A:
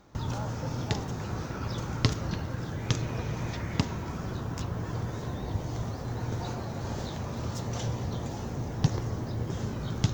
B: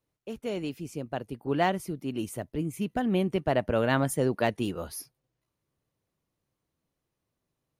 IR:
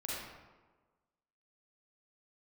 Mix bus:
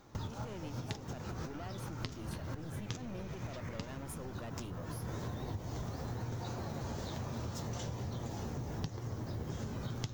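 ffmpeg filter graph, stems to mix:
-filter_complex "[0:a]highshelf=f=10000:g=6,flanger=delay=7.2:depth=7.8:regen=-43:speed=1.1:shape=triangular,volume=1.33[s0];[1:a]alimiter=limit=0.0708:level=0:latency=1,aeval=exprs='(tanh(39.8*val(0)+0.55)-tanh(0.55))/39.8':c=same,volume=0.355,asplit=2[s1][s2];[s2]apad=whole_len=446854[s3];[s0][s3]sidechaincompress=threshold=0.00141:ratio=3:attack=16:release=123[s4];[s4][s1]amix=inputs=2:normalize=0,acompressor=threshold=0.0158:ratio=8"

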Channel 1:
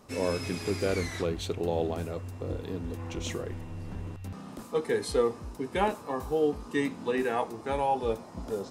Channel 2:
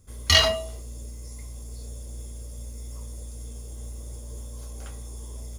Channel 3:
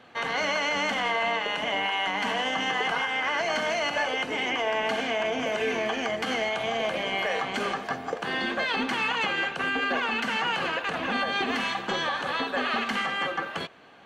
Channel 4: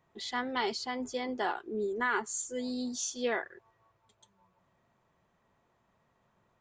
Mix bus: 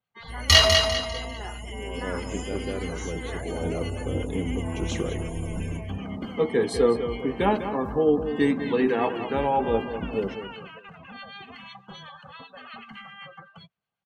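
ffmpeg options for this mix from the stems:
-filter_complex "[0:a]equalizer=f=220:t=o:w=1.8:g=6,adelay=1650,volume=1.33,asplit=2[s0][s1];[s1]volume=0.335[s2];[1:a]adelay=200,volume=1.26,asplit=2[s3][s4];[s4]volume=0.562[s5];[2:a]bandreject=f=1700:w=12,acrossover=split=1300[s6][s7];[s6]aeval=exprs='val(0)*(1-0.5/2+0.5/2*cos(2*PI*7.9*n/s))':c=same[s8];[s7]aeval=exprs='val(0)*(1-0.5/2-0.5/2*cos(2*PI*7.9*n/s))':c=same[s9];[s8][s9]amix=inputs=2:normalize=0,firequalizer=gain_entry='entry(160,0);entry(280,-18);entry(480,-13);entry(980,-10);entry(6300,-5)':delay=0.05:min_phase=1,volume=0.841[s10];[3:a]volume=0.422,asplit=2[s11][s12];[s12]apad=whole_len=456761[s13];[s0][s13]sidechaincompress=threshold=0.00141:ratio=8:attack=16:release=230[s14];[s2][s5]amix=inputs=2:normalize=0,aecho=0:1:199|398|597|796|995:1|0.39|0.152|0.0593|0.0231[s15];[s14][s3][s10][s11][s15]amix=inputs=5:normalize=0,afftdn=nr=22:nf=-43"

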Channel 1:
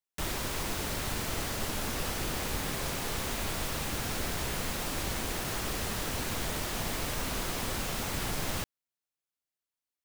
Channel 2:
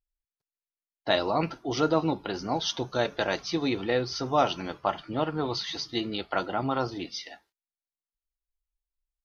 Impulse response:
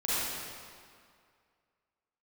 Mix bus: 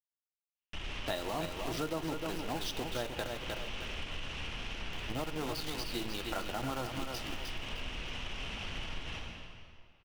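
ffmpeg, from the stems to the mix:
-filter_complex "[0:a]alimiter=level_in=1.06:limit=0.0631:level=0:latency=1,volume=0.944,lowpass=f=2900:t=q:w=5.5,aeval=exprs='(tanh(25.1*val(0)+0.65)-tanh(0.65))/25.1':c=same,adelay=550,volume=0.282,asplit=2[s0][s1];[s1]volume=0.501[s2];[1:a]acrusher=bits=6:dc=4:mix=0:aa=0.000001,volume=0.631,asplit=3[s3][s4][s5];[s3]atrim=end=3.27,asetpts=PTS-STARTPTS,afade=t=out:st=3.266:d=0.004:c=hsin[s6];[s4]atrim=start=3.27:end=4.93,asetpts=PTS-STARTPTS,volume=0[s7];[s5]atrim=start=4.93,asetpts=PTS-STARTPTS,afade=t=in:d=0.004:c=hsin[s8];[s6][s7][s8]concat=n=3:v=0:a=1,asplit=3[s9][s10][s11];[s10]volume=0.0708[s12];[s11]volume=0.473[s13];[2:a]atrim=start_sample=2205[s14];[s2][s12]amix=inputs=2:normalize=0[s15];[s15][s14]afir=irnorm=-1:irlink=0[s16];[s13]aecho=0:1:307|614|921|1228:1|0.3|0.09|0.027[s17];[s0][s9][s16][s17]amix=inputs=4:normalize=0,lowshelf=f=81:g=10,acompressor=threshold=0.0178:ratio=3"

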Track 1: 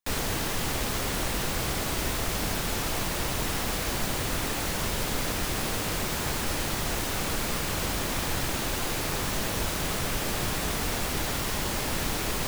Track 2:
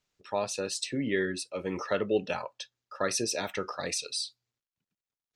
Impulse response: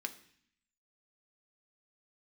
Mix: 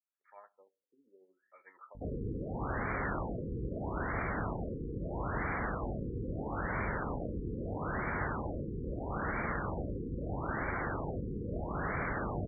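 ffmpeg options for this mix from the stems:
-filter_complex "[0:a]aeval=exprs='val(0)+0.00891*(sin(2*PI*50*n/s)+sin(2*PI*2*50*n/s)/2+sin(2*PI*3*50*n/s)/3+sin(2*PI*4*50*n/s)/4+sin(2*PI*5*50*n/s)/5)':c=same,adelay=1950,volume=0.596[s0];[1:a]highpass=1300,tremolo=f=13:d=0.45,volume=0.224,asplit=2[s1][s2];[s2]volume=0.398[s3];[2:a]atrim=start_sample=2205[s4];[s3][s4]afir=irnorm=-1:irlink=0[s5];[s0][s1][s5]amix=inputs=3:normalize=0,highpass=41,adynamicequalizer=threshold=0.00141:dfrequency=1500:dqfactor=1.7:tfrequency=1500:tqfactor=1.7:attack=5:release=100:ratio=0.375:range=3:mode=boostabove:tftype=bell,afftfilt=real='re*lt(b*sr/1024,490*pow(2400/490,0.5+0.5*sin(2*PI*0.77*pts/sr)))':imag='im*lt(b*sr/1024,490*pow(2400/490,0.5+0.5*sin(2*PI*0.77*pts/sr)))':win_size=1024:overlap=0.75"

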